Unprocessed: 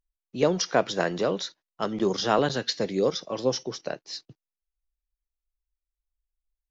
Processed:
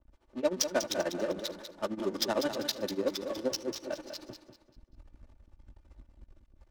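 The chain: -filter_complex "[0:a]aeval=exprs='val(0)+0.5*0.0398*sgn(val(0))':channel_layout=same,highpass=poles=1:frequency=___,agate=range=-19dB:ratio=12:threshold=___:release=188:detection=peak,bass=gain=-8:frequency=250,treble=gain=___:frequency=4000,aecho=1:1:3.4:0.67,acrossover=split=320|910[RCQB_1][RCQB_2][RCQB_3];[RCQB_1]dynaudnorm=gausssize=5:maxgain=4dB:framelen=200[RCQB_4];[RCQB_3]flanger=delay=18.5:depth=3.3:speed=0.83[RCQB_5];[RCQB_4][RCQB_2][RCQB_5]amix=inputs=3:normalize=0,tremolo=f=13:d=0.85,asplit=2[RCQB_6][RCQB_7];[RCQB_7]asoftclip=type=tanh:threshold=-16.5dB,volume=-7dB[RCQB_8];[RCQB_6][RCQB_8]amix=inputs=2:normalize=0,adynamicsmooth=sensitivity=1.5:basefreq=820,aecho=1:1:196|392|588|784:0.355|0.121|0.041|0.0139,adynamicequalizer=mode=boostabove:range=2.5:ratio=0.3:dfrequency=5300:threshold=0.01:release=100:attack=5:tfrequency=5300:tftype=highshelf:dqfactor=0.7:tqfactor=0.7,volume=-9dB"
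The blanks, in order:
56, -40dB, 11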